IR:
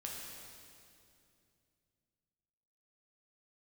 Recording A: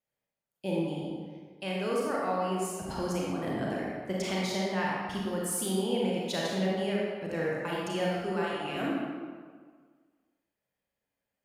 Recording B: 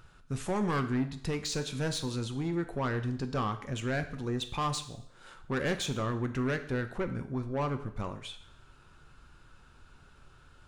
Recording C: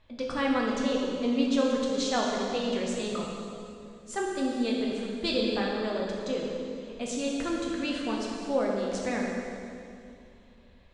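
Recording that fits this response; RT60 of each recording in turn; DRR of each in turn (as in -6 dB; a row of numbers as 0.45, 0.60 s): C; 1.7, 0.65, 2.5 s; -5.0, 7.5, -3.0 dB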